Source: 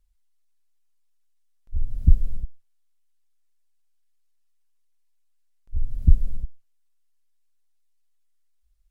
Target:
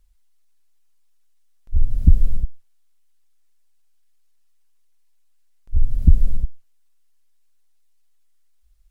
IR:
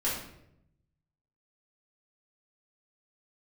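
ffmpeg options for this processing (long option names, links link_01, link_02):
-af "alimiter=level_in=9dB:limit=-1dB:release=50:level=0:latency=1,volume=-1dB"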